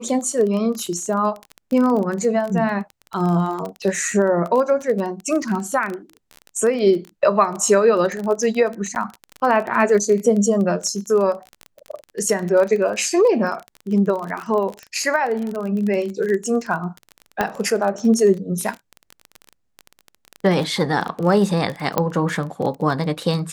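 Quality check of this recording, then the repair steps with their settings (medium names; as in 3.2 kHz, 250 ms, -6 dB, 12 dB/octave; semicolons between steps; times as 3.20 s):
crackle 25 per s -24 dBFS
8.95–8.96 s: dropout 9.9 ms
17.41 s: pop -6 dBFS
21.98 s: pop -5 dBFS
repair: de-click; interpolate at 8.95 s, 9.9 ms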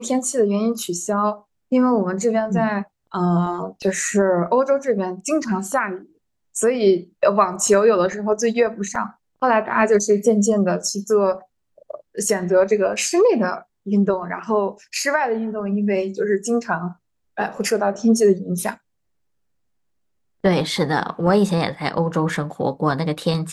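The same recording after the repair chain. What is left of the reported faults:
nothing left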